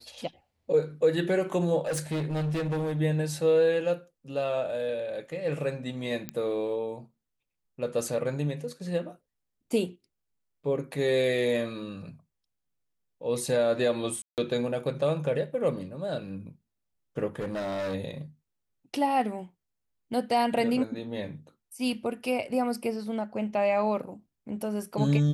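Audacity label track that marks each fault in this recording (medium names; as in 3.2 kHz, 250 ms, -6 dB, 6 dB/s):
1.860000	3.010000	clipped -26.5 dBFS
6.290000	6.290000	pop -17 dBFS
14.220000	14.380000	dropout 158 ms
17.390000	17.950000	clipped -29 dBFS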